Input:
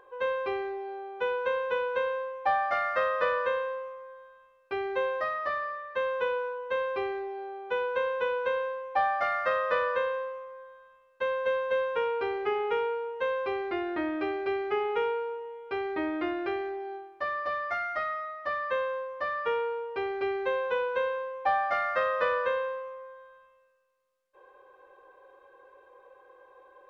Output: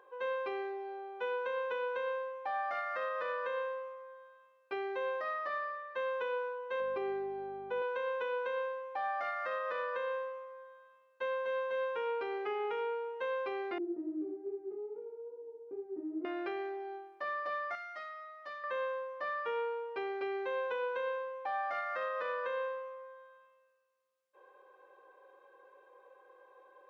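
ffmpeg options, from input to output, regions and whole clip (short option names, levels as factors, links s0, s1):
-filter_complex "[0:a]asettb=1/sr,asplit=3[s0][s1][s2];[s0]atrim=end=6.804[s3];[s1]atrim=start=6.8:end=7.82,asetpts=PTS-STARTPTS,afade=t=in:d=0.004:c=qsin,afade=t=out:st=1.016:d=0.004:c=qsin,tiltshelf=f=900:g=4.5,aeval=exprs='val(0)+0.00708*(sin(2*PI*50*n/s)+sin(2*PI*2*50*n/s)/2+sin(2*PI*3*50*n/s)/3+sin(2*PI*4*50*n/s)/4+sin(2*PI*5*50*n/s)/5)':c=same[s4];[s2]atrim=start=7.816[s5];[s3][s4]acrossfade=d=0.004:c1=hsin:c2=qsin[s6];[s6][s5]acrossfade=d=0.004:c1=qsin:c2=hsin,asettb=1/sr,asplit=3[s7][s8][s9];[s7]atrim=end=13.784[s10];[s8]atrim=start=13.78:end=16.25,asetpts=PTS-STARTPTS,afade=t=in:d=0.004:c=qsin,afade=t=out:st=2.466:d=0.004:c=qsin,acompressor=threshold=0.0158:ratio=6:attack=3.2:release=140:knee=1:detection=peak,lowpass=f=340:t=q:w=4.2,flanger=delay=16.5:depth=5.3:speed=2.4[s11];[s9]atrim=start=16.246[s12];[s10][s11]acrossfade=d=0.004:c1=hsin:c2=qsin[s13];[s13][s12]acrossfade=d=0.004:c1=qsin:c2=hsin,asettb=1/sr,asplit=3[s14][s15][s16];[s14]atrim=end=17.754[s17];[s15]atrim=start=17.75:end=18.64,asetpts=PTS-STARTPTS,afade=t=in:d=0.004:c=qsin,afade=t=out:st=0.886:d=0.004:c=qsin,equalizer=f=100:t=o:w=1.6:g=-11,acrossover=split=180|3000[s18][s19][s20];[s19]acompressor=threshold=0.00178:ratio=1.5:attack=3.2:release=140:knee=2.83:detection=peak[s21];[s18][s21][s20]amix=inputs=3:normalize=0[s22];[s16]atrim=start=18.636[s23];[s17][s22]acrossfade=d=0.004:c1=hsin:c2=qsin[s24];[s24][s23]acrossfade=d=0.004:c1=qsin:c2=hsin,highpass=230,alimiter=limit=0.0631:level=0:latency=1:release=75,volume=0.596"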